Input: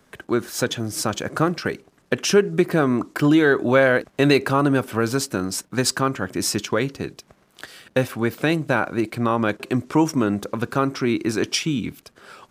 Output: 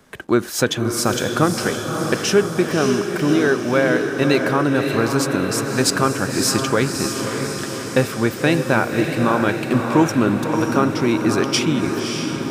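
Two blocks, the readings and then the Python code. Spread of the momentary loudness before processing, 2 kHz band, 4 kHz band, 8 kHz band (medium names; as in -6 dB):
9 LU, +2.5 dB, +4.0 dB, +4.5 dB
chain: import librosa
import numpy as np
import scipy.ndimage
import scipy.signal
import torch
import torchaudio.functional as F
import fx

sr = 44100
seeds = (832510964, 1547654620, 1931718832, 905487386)

y = fx.rider(x, sr, range_db=10, speed_s=2.0)
y = fx.echo_diffused(y, sr, ms=588, feedback_pct=62, wet_db=-5)
y = F.gain(torch.from_numpy(y), 1.0).numpy()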